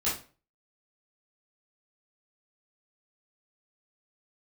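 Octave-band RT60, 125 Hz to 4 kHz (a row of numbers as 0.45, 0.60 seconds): 0.45, 0.40, 0.40, 0.35, 0.35, 0.30 seconds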